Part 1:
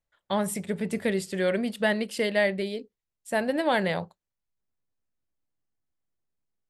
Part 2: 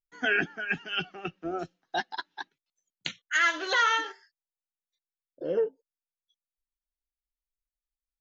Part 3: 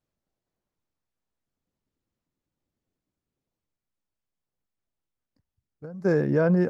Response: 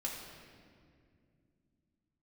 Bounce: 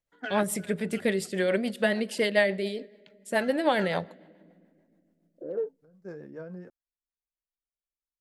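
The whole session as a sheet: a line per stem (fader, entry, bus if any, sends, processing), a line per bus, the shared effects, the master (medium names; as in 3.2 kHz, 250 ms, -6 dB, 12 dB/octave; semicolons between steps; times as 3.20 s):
+2.5 dB, 0.00 s, send -21.5 dB, none
-1.5 dB, 0.00 s, no send, local Wiener filter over 15 samples; low-pass 2.7 kHz 6 dB/octave; auto duck -15 dB, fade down 1.20 s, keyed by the first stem
-12.5 dB, 0.00 s, no send, flange 0.9 Hz, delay 9.6 ms, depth 1.5 ms, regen -76%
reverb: on, RT60 2.3 s, pre-delay 3 ms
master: bass shelf 150 Hz -7.5 dB; rotary cabinet horn 7 Hz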